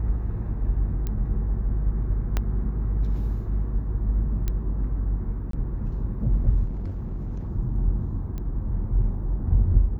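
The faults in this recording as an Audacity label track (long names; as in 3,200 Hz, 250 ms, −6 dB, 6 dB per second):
1.070000	1.070000	click −17 dBFS
2.370000	2.370000	click −11 dBFS
4.480000	4.480000	click −14 dBFS
5.510000	5.530000	drop-out 23 ms
6.650000	7.490000	clipping −26.5 dBFS
8.380000	8.380000	click −22 dBFS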